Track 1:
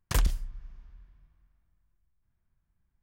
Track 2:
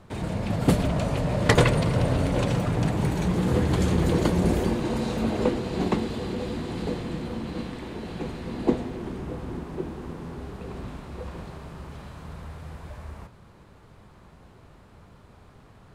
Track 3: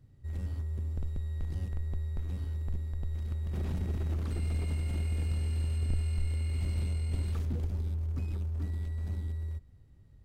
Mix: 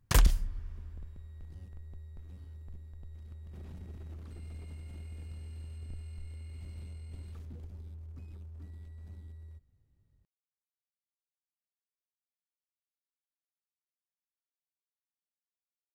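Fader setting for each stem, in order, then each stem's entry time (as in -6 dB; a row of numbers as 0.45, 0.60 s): +2.5 dB, off, -13.0 dB; 0.00 s, off, 0.00 s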